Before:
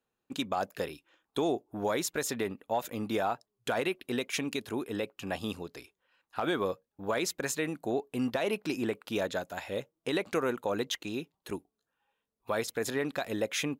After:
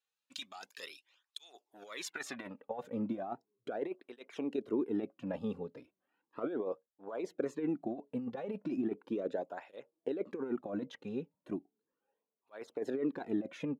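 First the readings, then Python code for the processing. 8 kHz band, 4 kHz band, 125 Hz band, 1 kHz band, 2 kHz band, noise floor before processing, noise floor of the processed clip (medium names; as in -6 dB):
under -15 dB, -12.5 dB, -7.5 dB, -11.5 dB, -13.0 dB, under -85 dBFS, under -85 dBFS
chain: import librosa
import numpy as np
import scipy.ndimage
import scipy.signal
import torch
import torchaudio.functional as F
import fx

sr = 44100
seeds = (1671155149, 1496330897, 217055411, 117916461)

y = fx.over_compress(x, sr, threshold_db=-32.0, ratio=-0.5)
y = fx.filter_sweep_bandpass(y, sr, from_hz=4400.0, to_hz=350.0, start_s=1.73, end_s=2.88, q=0.93)
y = fx.flanger_cancel(y, sr, hz=0.36, depth_ms=3.2)
y = y * librosa.db_to_amplitude(2.0)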